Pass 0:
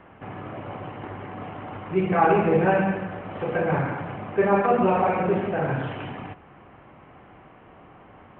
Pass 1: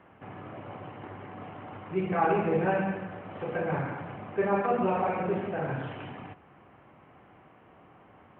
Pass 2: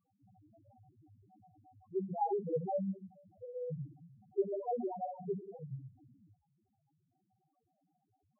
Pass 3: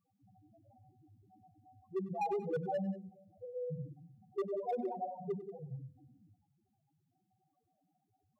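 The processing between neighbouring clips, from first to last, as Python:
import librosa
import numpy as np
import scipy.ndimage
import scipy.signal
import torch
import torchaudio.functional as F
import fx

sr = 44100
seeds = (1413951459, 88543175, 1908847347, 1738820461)

y1 = scipy.signal.sosfilt(scipy.signal.butter(2, 68.0, 'highpass', fs=sr, output='sos'), x)
y1 = y1 * librosa.db_to_amplitude(-6.5)
y2 = fx.spec_topn(y1, sr, count=1)
y2 = fx.upward_expand(y2, sr, threshold_db=-51.0, expansion=1.5)
y2 = y2 * librosa.db_to_amplitude(2.5)
y3 = fx.comb_fb(y2, sr, f0_hz=250.0, decay_s=1.1, harmonics='all', damping=0.0, mix_pct=50)
y3 = np.clip(y3, -10.0 ** (-36.0 / 20.0), 10.0 ** (-36.0 / 20.0))
y3 = fx.echo_multitap(y3, sr, ms=(97, 184), db=(-16.5, -18.0))
y3 = y3 * librosa.db_to_amplitude(5.5)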